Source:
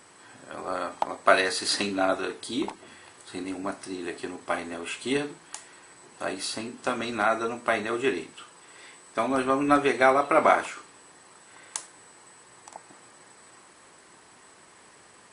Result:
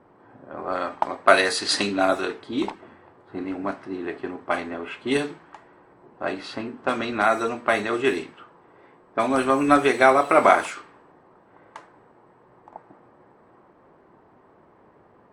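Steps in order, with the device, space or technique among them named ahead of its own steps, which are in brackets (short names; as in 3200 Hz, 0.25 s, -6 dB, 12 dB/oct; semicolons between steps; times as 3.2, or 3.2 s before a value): cassette deck with a dynamic noise filter (white noise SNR 33 dB; low-pass opened by the level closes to 730 Hz, open at -21 dBFS); gain +4 dB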